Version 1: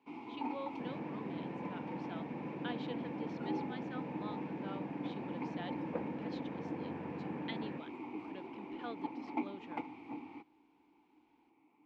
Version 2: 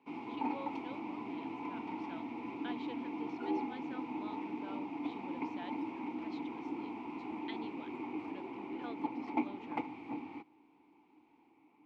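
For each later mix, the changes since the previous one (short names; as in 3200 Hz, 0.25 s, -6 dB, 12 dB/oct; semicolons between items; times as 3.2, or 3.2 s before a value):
speech -3.0 dB; first sound +3.5 dB; second sound: muted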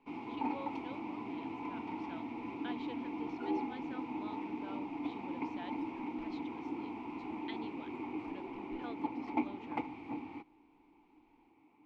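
master: remove HPF 120 Hz 12 dB/oct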